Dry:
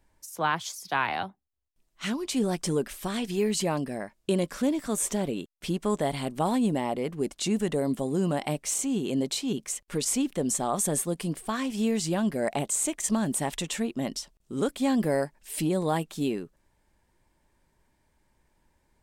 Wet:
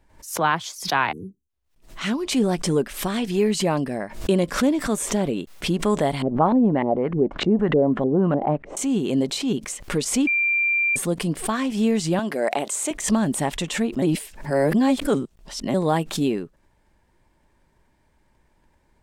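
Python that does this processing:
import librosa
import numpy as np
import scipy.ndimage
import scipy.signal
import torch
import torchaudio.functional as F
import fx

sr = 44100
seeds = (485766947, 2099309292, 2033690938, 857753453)

y = fx.spec_erase(x, sr, start_s=1.12, length_s=0.37, low_hz=490.0, high_hz=5800.0)
y = fx.filter_lfo_lowpass(y, sr, shape='saw_up', hz=3.3, low_hz=360.0, high_hz=2200.0, q=1.7, at=(6.22, 8.77))
y = fx.highpass(y, sr, hz=330.0, slope=12, at=(12.19, 12.91))
y = fx.edit(y, sr, fx.bleep(start_s=10.27, length_s=0.69, hz=2370.0, db=-22.5),
    fx.reverse_span(start_s=14.02, length_s=1.72), tone=tone)
y = fx.high_shelf(y, sr, hz=5300.0, db=-8.0)
y = fx.pre_swell(y, sr, db_per_s=120.0)
y = y * 10.0 ** (6.0 / 20.0)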